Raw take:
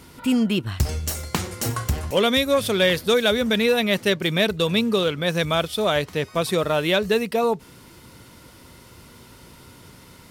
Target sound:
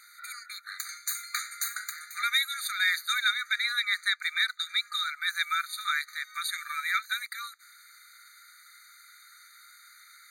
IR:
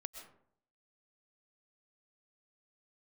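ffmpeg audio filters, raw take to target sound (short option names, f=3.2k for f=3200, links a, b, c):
-filter_complex "[0:a]asettb=1/sr,asplit=3[a][b][c];[a]atrim=end=3.184[d];[b]atrim=start=3.18:end=4.93,asetpts=PTS-STARTPTS,afade=t=in:d=0.004:c=qsin,afade=t=out:st=1.746:d=0.004:c=qsin,equalizer=f=13k:t=o:w=0.69:g=-9.5[e];[c]atrim=start=4.926[f];[d][e]acrossfade=d=0.004:c1=hsin:c2=qsin[g];[g][f]acrossfade=d=0.004:c1=qsin:c2=hsin,asettb=1/sr,asplit=3[h][i][j];[h]atrim=end=6.514[k];[i]atrim=start=6.51:end=7.23,asetpts=PTS-STARTPTS,afade=t=in:d=0.004:c=qsin,afade=t=out:st=0.716:d=0.004:c=qsin,afreqshift=-200[l];[j]atrim=start=7.226[m];[k][l]acrossfade=d=0.004:c1=hsin:c2=qsin[n];[n][m]acrossfade=d=0.004:c1=qsin:c2=hsin,afftfilt=real='re*eq(mod(floor(b*sr/1024/1200),2),1)':imag='im*eq(mod(floor(b*sr/1024/1200),2),1)':win_size=1024:overlap=0.75"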